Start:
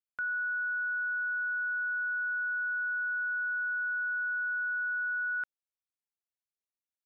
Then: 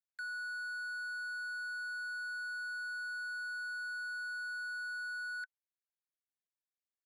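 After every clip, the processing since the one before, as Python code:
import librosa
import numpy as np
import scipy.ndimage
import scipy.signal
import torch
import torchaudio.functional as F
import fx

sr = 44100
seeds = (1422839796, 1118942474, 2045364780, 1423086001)

y = fx.wiener(x, sr, points=15)
y = scipy.signal.sosfilt(scipy.signal.cheby1(10, 1.0, 1500.0, 'highpass', fs=sr, output='sos'), y)
y = F.gain(torch.from_numpy(y), 2.0).numpy()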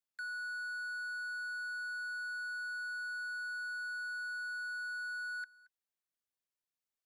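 y = x + 10.0 ** (-22.0 / 20.0) * np.pad(x, (int(226 * sr / 1000.0), 0))[:len(x)]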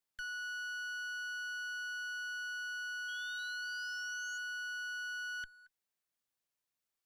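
y = fx.diode_clip(x, sr, knee_db=-51.5)
y = fx.spec_paint(y, sr, seeds[0], shape='rise', start_s=3.08, length_s=1.3, low_hz=3200.0, high_hz=6800.0, level_db=-56.0)
y = F.gain(torch.from_numpy(y), 3.0).numpy()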